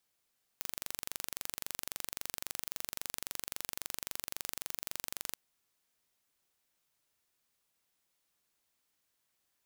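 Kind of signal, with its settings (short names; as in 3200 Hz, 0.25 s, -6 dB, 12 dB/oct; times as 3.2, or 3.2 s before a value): pulse train 23.7/s, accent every 0, -10 dBFS 4.76 s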